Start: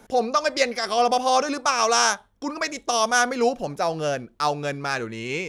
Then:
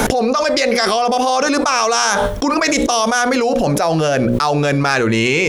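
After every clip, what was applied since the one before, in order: notches 60/120/180/240/300/360/420/480/540/600 Hz; fast leveller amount 100%; gain +1.5 dB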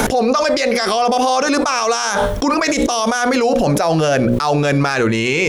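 limiter -9.5 dBFS, peak gain reduction 8 dB; gain +2.5 dB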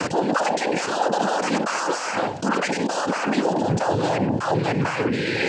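noise vocoder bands 8; air absorption 57 m; gain -6 dB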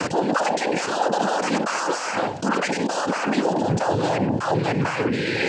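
nothing audible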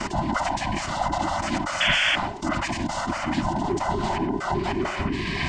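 band inversion scrambler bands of 500 Hz; painted sound noise, 1.8–2.16, 1400–3500 Hz -18 dBFS; gain -3.5 dB

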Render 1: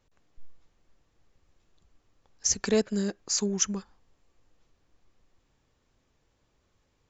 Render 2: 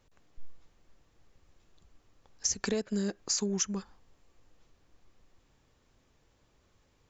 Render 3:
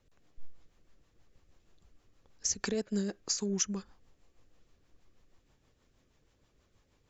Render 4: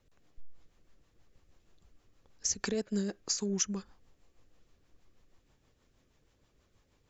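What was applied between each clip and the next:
compressor 12:1, threshold -30 dBFS, peak gain reduction 12 dB; gain +3 dB
rotary speaker horn 6.3 Hz
core saturation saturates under 94 Hz

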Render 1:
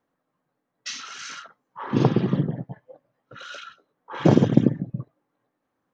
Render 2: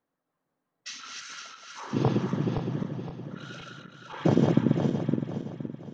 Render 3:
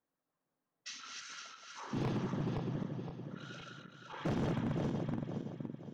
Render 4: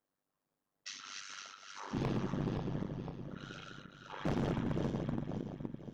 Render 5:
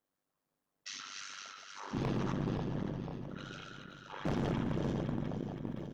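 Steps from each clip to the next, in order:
regenerating reverse delay 0.258 s, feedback 61%, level -2.5 dB; gain -6.5 dB
hard clip -24.5 dBFS, distortion -6 dB; gain -6.5 dB
AM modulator 98 Hz, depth 60%; gain +3.5 dB
speakerphone echo 0.17 s, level -10 dB; sustainer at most 24 dB/s

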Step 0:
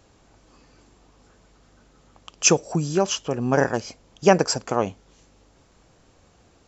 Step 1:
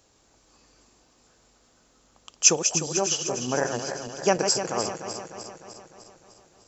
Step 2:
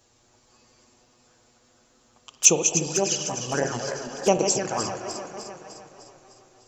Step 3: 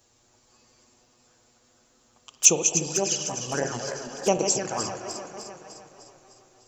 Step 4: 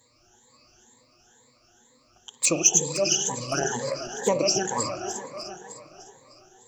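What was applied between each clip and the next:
regenerating reverse delay 0.151 s, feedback 75%, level -7.5 dB; tone controls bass -5 dB, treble +9 dB; gain -6 dB
envelope flanger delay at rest 8.6 ms, full sweep at -19.5 dBFS; reverb RT60 2.4 s, pre-delay 35 ms, DRR 9 dB; gain +3.5 dB
high shelf 8300 Hz +6.5 dB; gain -2.5 dB
moving spectral ripple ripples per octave 1, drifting +2.1 Hz, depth 20 dB; in parallel at -6 dB: soft clip -11 dBFS, distortion -14 dB; on the sum: gain -5.5 dB

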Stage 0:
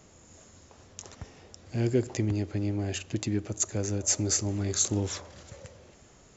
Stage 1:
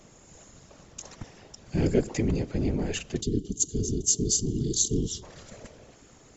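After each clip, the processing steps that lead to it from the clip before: whisperiser; spectral gain 3.21–5.23, 470–2800 Hz -25 dB; gain +2 dB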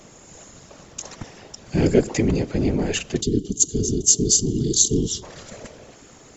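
low shelf 130 Hz -6 dB; gain +8 dB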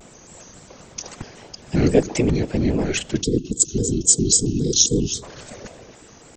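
shaped vibrato square 3.7 Hz, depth 160 cents; gain +1 dB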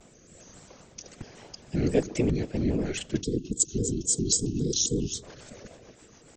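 rotary speaker horn 1.2 Hz, later 7 Hz, at 1.64; gain -5.5 dB

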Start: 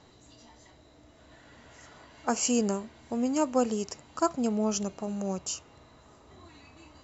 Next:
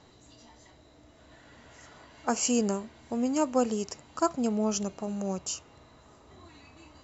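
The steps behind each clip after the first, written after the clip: nothing audible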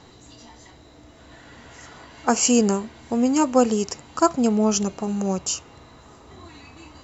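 notch 610 Hz, Q 12; gain +8.5 dB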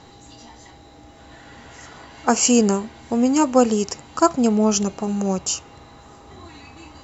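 whine 810 Hz -53 dBFS; gain +2 dB

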